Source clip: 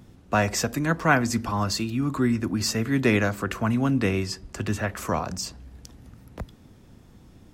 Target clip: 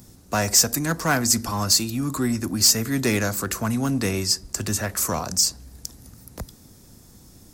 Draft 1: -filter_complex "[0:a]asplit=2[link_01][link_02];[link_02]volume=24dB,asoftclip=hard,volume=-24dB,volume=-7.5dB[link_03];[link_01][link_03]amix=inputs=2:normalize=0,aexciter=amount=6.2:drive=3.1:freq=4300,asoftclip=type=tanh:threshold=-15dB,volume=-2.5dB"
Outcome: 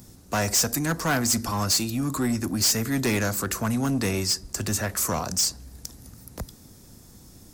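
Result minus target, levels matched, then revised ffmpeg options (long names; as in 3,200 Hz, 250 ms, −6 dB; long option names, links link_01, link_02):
soft clipping: distortion +11 dB
-filter_complex "[0:a]asplit=2[link_01][link_02];[link_02]volume=24dB,asoftclip=hard,volume=-24dB,volume=-7.5dB[link_03];[link_01][link_03]amix=inputs=2:normalize=0,aexciter=amount=6.2:drive=3.1:freq=4300,asoftclip=type=tanh:threshold=-4.5dB,volume=-2.5dB"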